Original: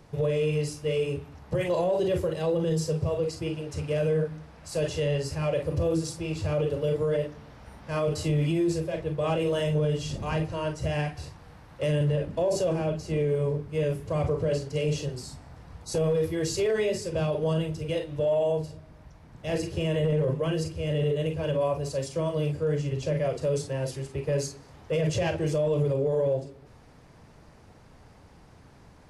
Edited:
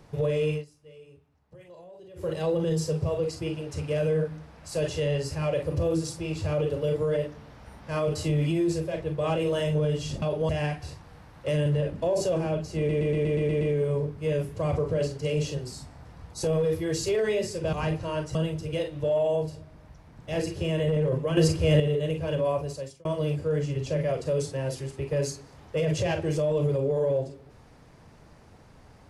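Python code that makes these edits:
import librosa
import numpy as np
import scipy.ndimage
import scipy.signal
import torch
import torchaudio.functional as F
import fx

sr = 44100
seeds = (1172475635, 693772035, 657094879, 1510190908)

y = fx.edit(x, sr, fx.fade_down_up(start_s=0.51, length_s=1.79, db=-22.5, fade_s=0.14),
    fx.swap(start_s=10.22, length_s=0.62, other_s=17.24, other_length_s=0.27),
    fx.stutter(start_s=13.12, slice_s=0.12, count=8),
    fx.clip_gain(start_s=20.53, length_s=0.43, db=8.5),
    fx.fade_out_span(start_s=21.74, length_s=0.47), tone=tone)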